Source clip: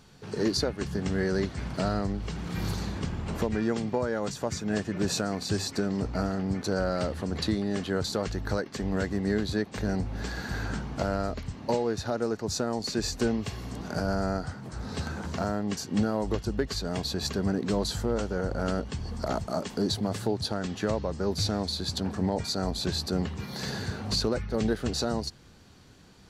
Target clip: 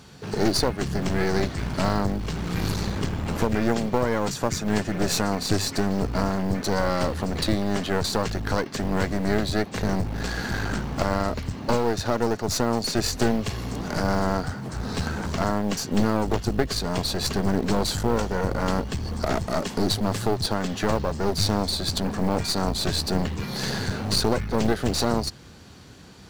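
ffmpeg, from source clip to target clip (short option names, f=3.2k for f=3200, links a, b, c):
-af "highpass=45,acrusher=bits=8:mode=log:mix=0:aa=0.000001,aeval=exprs='clip(val(0),-1,0.0133)':c=same,volume=8dB"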